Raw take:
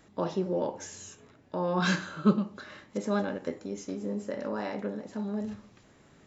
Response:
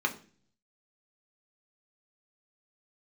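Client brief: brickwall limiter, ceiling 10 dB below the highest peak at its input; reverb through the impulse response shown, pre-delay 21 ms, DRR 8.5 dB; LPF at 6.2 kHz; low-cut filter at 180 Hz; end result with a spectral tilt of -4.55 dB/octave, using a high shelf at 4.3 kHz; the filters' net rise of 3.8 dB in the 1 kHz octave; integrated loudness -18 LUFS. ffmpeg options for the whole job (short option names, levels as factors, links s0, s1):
-filter_complex "[0:a]highpass=180,lowpass=6200,equalizer=f=1000:t=o:g=4.5,highshelf=f=4300:g=3.5,alimiter=limit=0.0794:level=0:latency=1,asplit=2[s0][s1];[1:a]atrim=start_sample=2205,adelay=21[s2];[s1][s2]afir=irnorm=-1:irlink=0,volume=0.141[s3];[s0][s3]amix=inputs=2:normalize=0,volume=6.68"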